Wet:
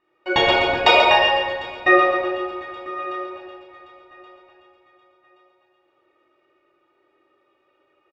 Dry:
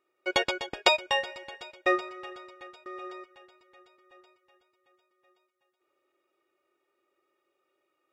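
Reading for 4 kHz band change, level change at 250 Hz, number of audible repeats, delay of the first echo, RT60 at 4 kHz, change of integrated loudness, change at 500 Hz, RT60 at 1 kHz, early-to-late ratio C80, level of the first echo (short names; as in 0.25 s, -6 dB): +9.5 dB, +12.5 dB, 1, 0.136 s, 1.0 s, +10.0 dB, +12.0 dB, 1.1 s, 1.5 dB, -7.0 dB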